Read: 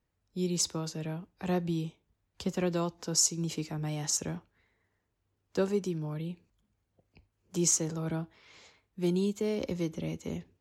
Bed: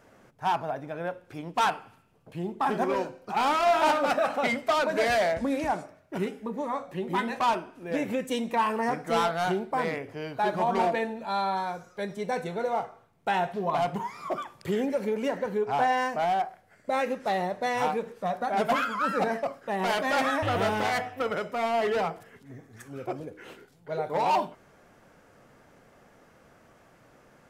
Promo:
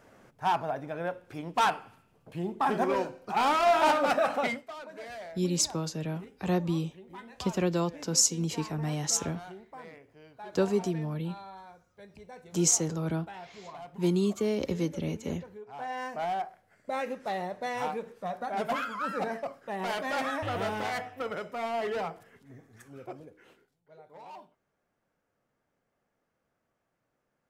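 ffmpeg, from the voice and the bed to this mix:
ffmpeg -i stem1.wav -i stem2.wav -filter_complex "[0:a]adelay=5000,volume=2.5dB[link_01];[1:a]volume=12dB,afade=type=out:start_time=4.37:duration=0.3:silence=0.133352,afade=type=in:start_time=15.73:duration=0.5:silence=0.237137,afade=type=out:start_time=22.69:duration=1.17:silence=0.141254[link_02];[link_01][link_02]amix=inputs=2:normalize=0" out.wav

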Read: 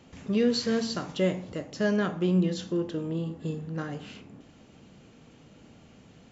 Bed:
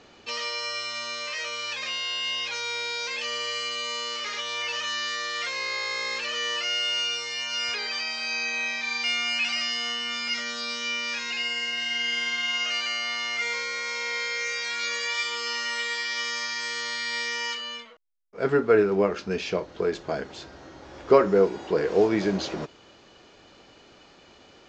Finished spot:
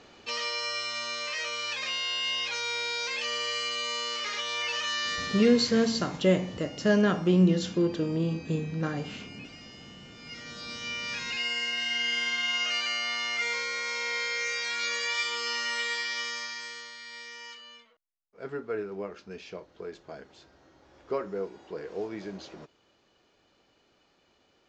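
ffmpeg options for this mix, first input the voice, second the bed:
ffmpeg -i stem1.wav -i stem2.wav -filter_complex "[0:a]adelay=5050,volume=3dB[link_01];[1:a]volume=19.5dB,afade=type=out:start_time=5.12:duration=0.6:silence=0.0891251,afade=type=in:start_time=10.15:duration=1.38:silence=0.0944061,afade=type=out:start_time=15.92:duration=1:silence=0.237137[link_02];[link_01][link_02]amix=inputs=2:normalize=0" out.wav

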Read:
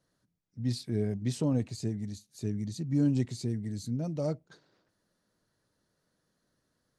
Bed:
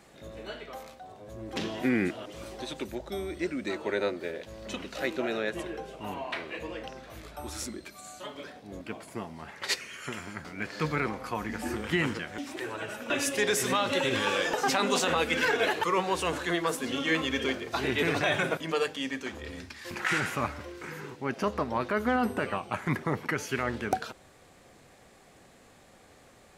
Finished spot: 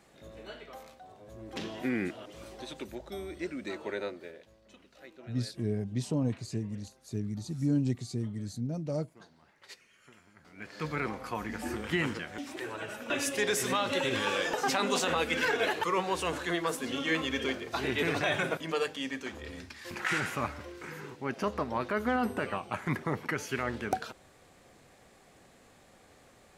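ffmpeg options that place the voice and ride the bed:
ffmpeg -i stem1.wav -i stem2.wav -filter_complex "[0:a]adelay=4700,volume=-1.5dB[link_01];[1:a]volume=13dB,afade=type=out:start_time=3.85:duration=0.76:silence=0.16788,afade=type=in:start_time=10.36:duration=0.75:silence=0.125893[link_02];[link_01][link_02]amix=inputs=2:normalize=0" out.wav

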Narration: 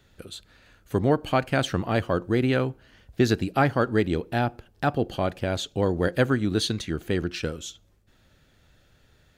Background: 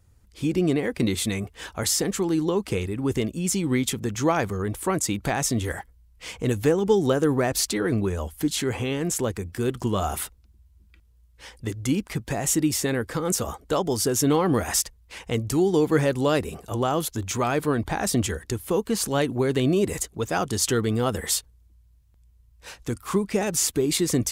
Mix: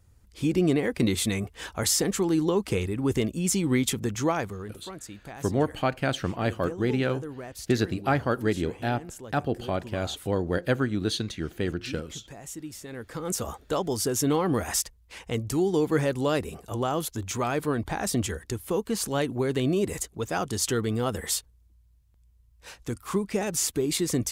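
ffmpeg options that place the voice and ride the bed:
ffmpeg -i stem1.wav -i stem2.wav -filter_complex "[0:a]adelay=4500,volume=-3dB[link_01];[1:a]volume=12.5dB,afade=type=out:start_time=4.02:duration=0.77:silence=0.158489,afade=type=in:start_time=12.87:duration=0.59:silence=0.223872[link_02];[link_01][link_02]amix=inputs=2:normalize=0" out.wav

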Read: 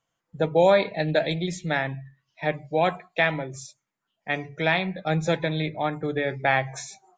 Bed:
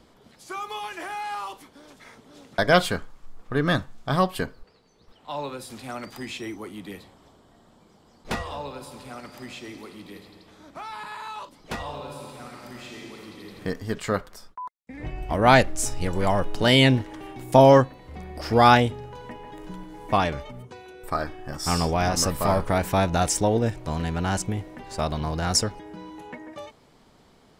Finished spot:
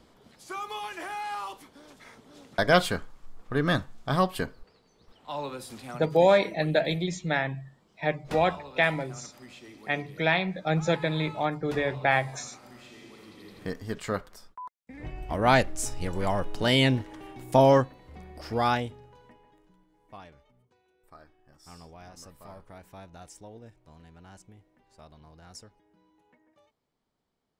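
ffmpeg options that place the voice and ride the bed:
ffmpeg -i stem1.wav -i stem2.wav -filter_complex "[0:a]adelay=5600,volume=-1.5dB[link_01];[1:a]volume=1.5dB,afade=type=out:start_time=5.72:duration=0.41:silence=0.473151,afade=type=in:start_time=12.97:duration=0.68:silence=0.630957,afade=type=out:start_time=17.69:duration=2.02:silence=0.1[link_02];[link_01][link_02]amix=inputs=2:normalize=0" out.wav

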